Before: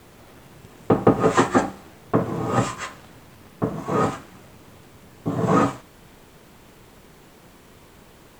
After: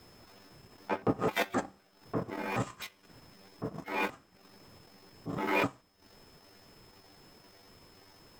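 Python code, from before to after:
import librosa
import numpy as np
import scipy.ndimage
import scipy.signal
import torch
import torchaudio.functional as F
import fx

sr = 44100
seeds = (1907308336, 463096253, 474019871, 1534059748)

y = fx.pitch_trill(x, sr, semitones=11.5, every_ms=256)
y = y + 10.0 ** (-53.0 / 20.0) * np.sin(2.0 * np.pi * 5200.0 * np.arange(len(y)) / sr)
y = fx.transient(y, sr, attack_db=-8, sustain_db=-12)
y = y * 10.0 ** (-8.0 / 20.0)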